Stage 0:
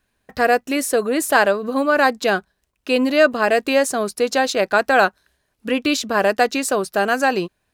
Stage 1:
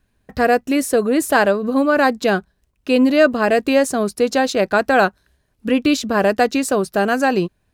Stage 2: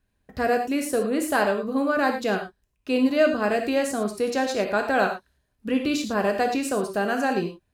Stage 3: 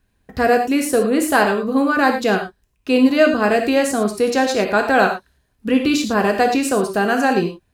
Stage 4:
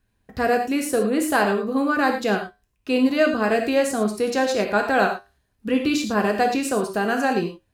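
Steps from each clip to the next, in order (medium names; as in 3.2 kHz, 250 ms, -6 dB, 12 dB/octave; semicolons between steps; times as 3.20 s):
bass shelf 310 Hz +11.5 dB; trim -1.5 dB
gated-style reverb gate 130 ms flat, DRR 4 dB; trim -8.5 dB
band-stop 590 Hz, Q 13; trim +7.5 dB
flange 0.28 Hz, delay 9 ms, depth 1.1 ms, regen +79%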